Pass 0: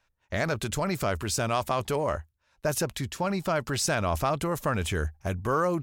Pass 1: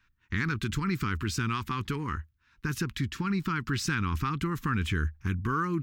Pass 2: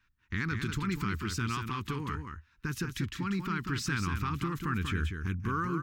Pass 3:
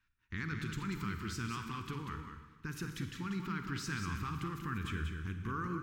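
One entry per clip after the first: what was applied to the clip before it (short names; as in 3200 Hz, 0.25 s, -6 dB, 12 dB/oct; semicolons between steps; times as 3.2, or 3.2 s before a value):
bell 10000 Hz -14.5 dB 1.6 oct; in parallel at +2.5 dB: compressor, threshold -36 dBFS, peak gain reduction 13.5 dB; on the sum: Chebyshev band-stop 300–1300 Hz, order 2; gain -1 dB
echo 0.189 s -6.5 dB; gain -3.5 dB
reverb RT60 1.5 s, pre-delay 39 ms, DRR 7 dB; gain -7 dB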